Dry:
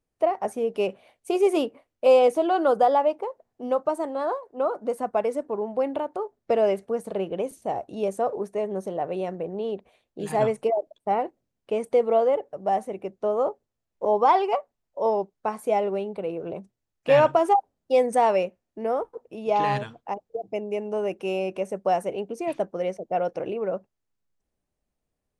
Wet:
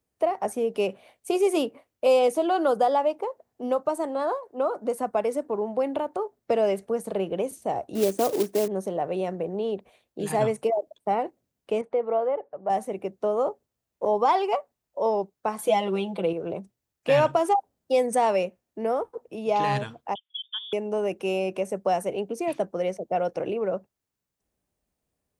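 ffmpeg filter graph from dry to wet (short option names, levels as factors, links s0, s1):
-filter_complex "[0:a]asettb=1/sr,asplit=3[s0][s1][s2];[s0]atrim=end=7.954[s3];[s1]atrim=start=7.95:end=8.68,asetpts=PTS-STARTPTS,afade=t=in:d=0.004:c=qsin,afade=t=out:st=0.726:d=0.004:c=qsin,lowpass=6500,equalizer=f=310:t=o:w=0.57:g=15,acrusher=bits=4:mode=log:mix=0:aa=0.000001[s4];[s2]atrim=start=8.676[s5];[s3][s4]acrossfade=d=0.004:c1=hsin:c2=qsin[s6];[s6][s5]acrossfade=d=0.004:c1=qsin:c2=hsin,asettb=1/sr,asplit=3[s7][s8][s9];[s7]atrim=end=11.814[s10];[s8]atrim=start=11.81:end=12.7,asetpts=PTS-STARTPTS,afade=t=in:d=0.004:c=qsin,afade=t=out:st=0.886:d=0.004:c=qsin,lowpass=1600,lowshelf=f=410:g=-10.5[s11];[s9]atrim=start=12.696[s12];[s10][s11]acrossfade=d=0.004:c1=hsin:c2=qsin[s13];[s13][s12]acrossfade=d=0.004:c1=qsin:c2=hsin,asettb=1/sr,asplit=3[s14][s15][s16];[s14]atrim=end=15.584[s17];[s15]atrim=start=15.58:end=16.33,asetpts=PTS-STARTPTS,afade=t=in:d=0.004:c=qsin,afade=t=out:st=0.746:d=0.004:c=qsin,equalizer=f=3300:w=3.2:g=10.5,aecho=1:1:5.9:0.94,atrim=end_sample=33075[s18];[s16]atrim=start=16.326[s19];[s17][s18]acrossfade=d=0.004:c1=hsin:c2=qsin[s20];[s20][s19]acrossfade=d=0.004:c1=qsin:c2=hsin,asettb=1/sr,asplit=3[s21][s22][s23];[s21]atrim=end=20.154[s24];[s22]atrim=start=20.15:end=20.73,asetpts=PTS-STARTPTS,afade=t=in:d=0.004:c=qsin,afade=t=out:st=0.576:d=0.004:c=qsin,highpass=f=970:p=1,highshelf=f=2200:g=-8,lowpass=f=3200:t=q:w=0.5098,lowpass=f=3200:t=q:w=0.6013,lowpass=f=3200:t=q:w=0.9,lowpass=f=3200:t=q:w=2.563,afreqshift=-3800[s25];[s23]atrim=start=20.726[s26];[s24][s25]acrossfade=d=0.004:c1=hsin:c2=qsin[s27];[s27][s26]acrossfade=d=0.004:c1=qsin:c2=hsin,highpass=44,highshelf=f=8900:g=6.5,acrossover=split=190|3000[s28][s29][s30];[s29]acompressor=threshold=0.0398:ratio=1.5[s31];[s28][s31][s30]amix=inputs=3:normalize=0,volume=1.26"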